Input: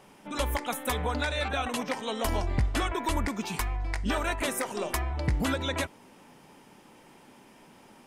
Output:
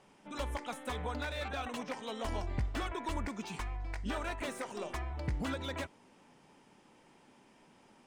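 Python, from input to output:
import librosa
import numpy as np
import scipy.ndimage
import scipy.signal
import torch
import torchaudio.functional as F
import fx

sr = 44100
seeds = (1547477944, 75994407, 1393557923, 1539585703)

y = scipy.signal.sosfilt(scipy.signal.butter(4, 9500.0, 'lowpass', fs=sr, output='sos'), x)
y = fx.slew_limit(y, sr, full_power_hz=80.0)
y = y * librosa.db_to_amplitude(-8.0)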